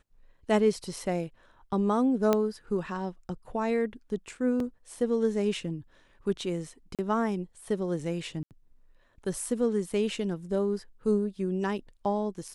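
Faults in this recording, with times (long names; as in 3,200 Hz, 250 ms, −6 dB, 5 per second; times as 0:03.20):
0:02.33: click −11 dBFS
0:04.60: drop-out 2.6 ms
0:06.95–0:06.99: drop-out 37 ms
0:08.43–0:08.51: drop-out 78 ms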